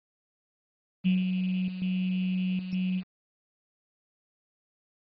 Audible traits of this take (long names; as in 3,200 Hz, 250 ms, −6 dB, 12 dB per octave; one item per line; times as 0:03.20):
a buzz of ramps at a fixed pitch in blocks of 16 samples
chopped level 1.1 Hz, depth 60%, duty 85%
a quantiser's noise floor 8 bits, dither none
MP2